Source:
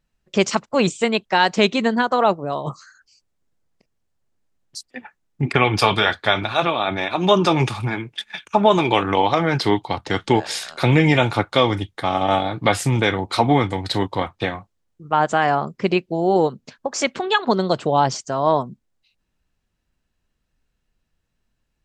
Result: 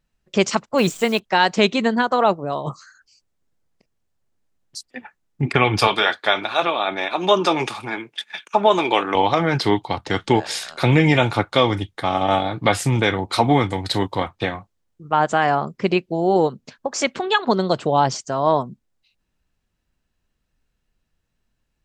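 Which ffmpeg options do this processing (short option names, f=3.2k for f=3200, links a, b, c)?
-filter_complex "[0:a]asplit=3[a][b][c];[a]afade=t=out:st=0.77:d=0.02[d];[b]acrusher=bits=7:dc=4:mix=0:aa=0.000001,afade=t=in:st=0.77:d=0.02,afade=t=out:st=1.18:d=0.02[e];[c]afade=t=in:st=1.18:d=0.02[f];[d][e][f]amix=inputs=3:normalize=0,asettb=1/sr,asplit=3[g][h][i];[g]atrim=end=5.874[j];[h]atrim=start=5.87:end=9.15,asetpts=PTS-STARTPTS,afade=t=in:d=0.004:c=qsin,afade=t=out:st=3.276:d=0.004:c=qsin,highpass=300[k];[i]atrim=start=9.146[l];[j][k]acrossfade=d=0.004:c1=hsin:c2=qsin[m];[m][l]acrossfade=d=0.004:c1=qsin:c2=hsin,asettb=1/sr,asplit=3[n][o][p];[n]atrim=end=13.334[q];[o]atrim=start=13.33:end=14.24,asetpts=PTS-STARTPTS,afade=t=in:d=0.004:c=qsin,afade=t=out:st=0.906:d=0.004:c=qsin,highshelf=f=8k:g=6[r];[p]atrim=start=14.236[s];[q][r]acrossfade=d=0.004:c1=hsin:c2=qsin[t];[t][s]acrossfade=d=0.004:c1=qsin:c2=hsin"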